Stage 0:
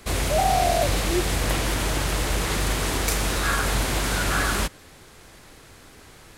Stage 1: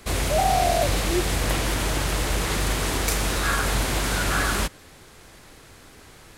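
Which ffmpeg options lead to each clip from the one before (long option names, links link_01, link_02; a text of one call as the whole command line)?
ffmpeg -i in.wav -af anull out.wav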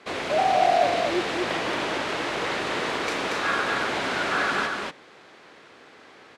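ffmpeg -i in.wav -filter_complex "[0:a]highpass=300,lowpass=3400,asplit=2[link_01][link_02];[link_02]aecho=0:1:233:0.708[link_03];[link_01][link_03]amix=inputs=2:normalize=0" out.wav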